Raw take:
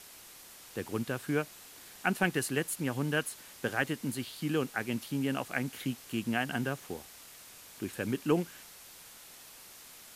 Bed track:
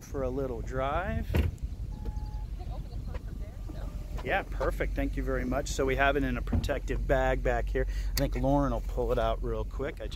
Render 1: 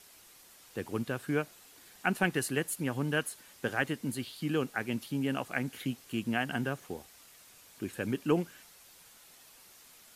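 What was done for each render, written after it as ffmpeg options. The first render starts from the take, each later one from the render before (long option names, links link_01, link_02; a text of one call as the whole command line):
ffmpeg -i in.wav -af "afftdn=noise_reduction=6:noise_floor=-52" out.wav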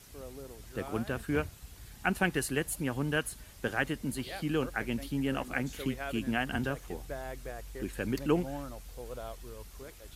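ffmpeg -i in.wav -i bed.wav -filter_complex "[1:a]volume=-13.5dB[link_01];[0:a][link_01]amix=inputs=2:normalize=0" out.wav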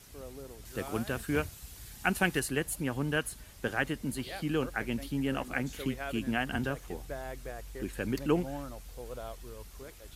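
ffmpeg -i in.wav -filter_complex "[0:a]asettb=1/sr,asplit=3[link_01][link_02][link_03];[link_01]atrim=end=0.654[link_04];[link_02]atrim=start=0.65:end=2.4,asetpts=PTS-STARTPTS,afade=type=in:duration=0.004:curve=qsin,afade=type=out:start_time=1.746:duration=0.004:curve=qsin,highshelf=frequency=3400:gain=7[link_05];[link_03]atrim=start=2.396[link_06];[link_04][link_05]acrossfade=duration=0.004:curve1=hsin:curve2=qsin[link_07];[link_07][link_06]acrossfade=duration=0.004:curve1=qsin:curve2=hsin" out.wav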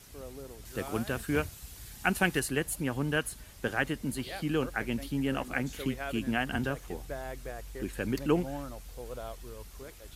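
ffmpeg -i in.wav -af "volume=1dB" out.wav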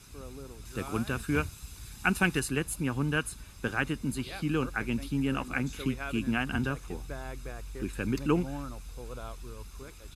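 ffmpeg -i in.wav -af "lowpass=11000,aecho=1:1:0.8:0.46" out.wav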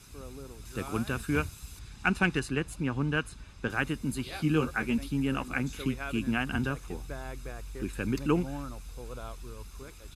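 ffmpeg -i in.wav -filter_complex "[0:a]asettb=1/sr,asplit=3[link_01][link_02][link_03];[link_01]atrim=end=1.794[link_04];[link_02]atrim=start=1.79:end=3.7,asetpts=PTS-STARTPTS,afade=type=in:duration=0.004:curve=qsin,afade=type=out:start_time=1.906:duration=0.004:curve=qsin,adynamicsmooth=sensitivity=1.5:basefreq=6200[link_05];[link_03]atrim=start=3.696[link_06];[link_04][link_05]acrossfade=duration=0.004:curve1=hsin:curve2=qsin[link_07];[link_07][link_06]acrossfade=duration=0.004:curve1=qsin:curve2=hsin,asettb=1/sr,asplit=3[link_08][link_09][link_10];[link_08]atrim=end=4.314[link_11];[link_09]atrim=start=4.31:end=4.98,asetpts=PTS-STARTPTS,afade=type=in:duration=0.004:curve=qsin,afade=type=out:start_time=0.666:duration=0.004:curve=qsin,asplit=2[link_12][link_13];[link_13]adelay=13,volume=-4dB[link_14];[link_12][link_14]amix=inputs=2:normalize=0,atrim=end_sample=29547[link_15];[link_10]atrim=start=4.976[link_16];[link_11][link_15]acrossfade=duration=0.004:curve1=hsin:curve2=qsin[link_17];[link_17][link_16]acrossfade=duration=0.004:curve1=qsin:curve2=hsin" out.wav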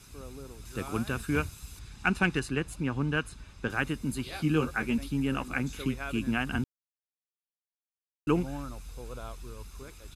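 ffmpeg -i in.wav -filter_complex "[0:a]asplit=3[link_01][link_02][link_03];[link_01]atrim=end=6.64,asetpts=PTS-STARTPTS,afade=type=out:start_time=6.636:duration=0.004:curve=hsin[link_04];[link_02]atrim=start=6.64:end=8.27,asetpts=PTS-STARTPTS,volume=0[link_05];[link_03]atrim=start=8.27,asetpts=PTS-STARTPTS,afade=type=in:duration=0.004:curve=hsin[link_06];[link_04][link_05][link_06]concat=n=3:v=0:a=1" out.wav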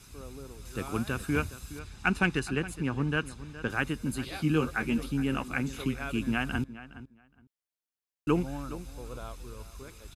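ffmpeg -i in.wav -filter_complex "[0:a]asplit=2[link_01][link_02];[link_02]adelay=416,lowpass=frequency=2800:poles=1,volume=-15dB,asplit=2[link_03][link_04];[link_04]adelay=416,lowpass=frequency=2800:poles=1,volume=0.17[link_05];[link_01][link_03][link_05]amix=inputs=3:normalize=0" out.wav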